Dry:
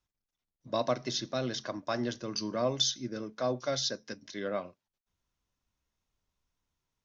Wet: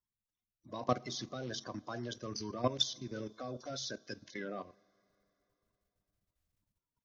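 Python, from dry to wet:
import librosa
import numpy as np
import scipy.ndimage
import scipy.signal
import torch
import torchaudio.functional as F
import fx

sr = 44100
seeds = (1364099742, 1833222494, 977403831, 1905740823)

y = fx.spec_quant(x, sr, step_db=30)
y = fx.level_steps(y, sr, step_db=14)
y = fx.rev_double_slope(y, sr, seeds[0], early_s=0.26, late_s=3.6, knee_db=-18, drr_db=19.0)
y = y * librosa.db_to_amplitude(1.0)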